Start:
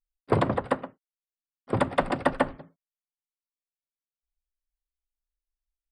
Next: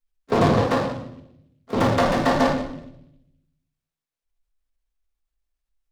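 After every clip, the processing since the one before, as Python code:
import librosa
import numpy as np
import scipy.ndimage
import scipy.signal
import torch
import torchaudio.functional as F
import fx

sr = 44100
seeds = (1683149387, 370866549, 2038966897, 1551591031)

y = fx.room_shoebox(x, sr, seeds[0], volume_m3=190.0, walls='mixed', distance_m=1.6)
y = fx.transient(y, sr, attack_db=-2, sustain_db=2)
y = fx.noise_mod_delay(y, sr, seeds[1], noise_hz=2700.0, depth_ms=0.032)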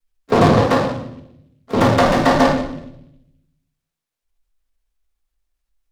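y = fx.vibrato(x, sr, rate_hz=0.57, depth_cents=22.0)
y = F.gain(torch.from_numpy(y), 5.5).numpy()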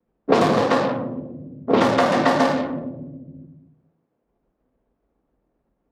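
y = scipy.signal.sosfilt(scipy.signal.butter(2, 180.0, 'highpass', fs=sr, output='sos'), x)
y = fx.env_lowpass(y, sr, base_hz=440.0, full_db=-10.0)
y = fx.band_squash(y, sr, depth_pct=100)
y = F.gain(torch.from_numpy(y), -3.0).numpy()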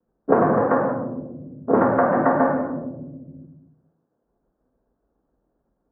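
y = scipy.signal.sosfilt(scipy.signal.ellip(4, 1.0, 80, 1600.0, 'lowpass', fs=sr, output='sos'), x)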